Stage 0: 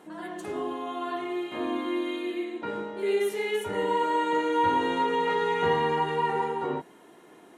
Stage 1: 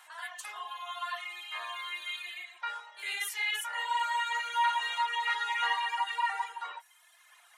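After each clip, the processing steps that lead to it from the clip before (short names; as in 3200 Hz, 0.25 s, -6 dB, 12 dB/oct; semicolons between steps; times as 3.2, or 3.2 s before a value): Bessel high-pass 1500 Hz, order 6; reverb removal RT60 1.3 s; gain +6.5 dB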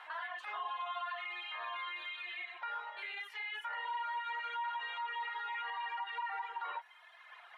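compressor 3:1, threshold -41 dBFS, peak gain reduction 13 dB; limiter -38.5 dBFS, peak gain reduction 10.5 dB; air absorption 390 m; gain +9 dB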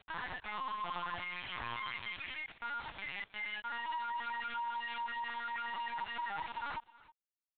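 bit-crush 7-bit; echo 0.318 s -20.5 dB; LPC vocoder at 8 kHz pitch kept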